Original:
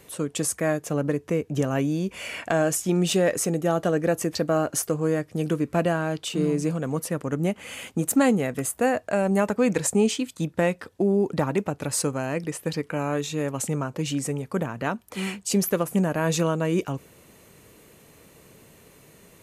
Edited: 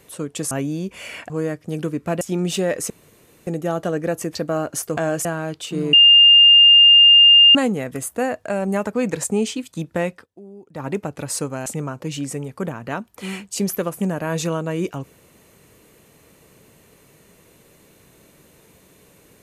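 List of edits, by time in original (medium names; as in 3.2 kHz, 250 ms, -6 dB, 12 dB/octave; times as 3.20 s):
0.51–1.71 s: delete
2.50–2.78 s: swap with 4.97–5.88 s
3.47 s: insert room tone 0.57 s
6.56–8.18 s: bleep 2.81 kHz -6.5 dBFS
10.75–11.51 s: dip -19.5 dB, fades 0.15 s
12.29–13.60 s: delete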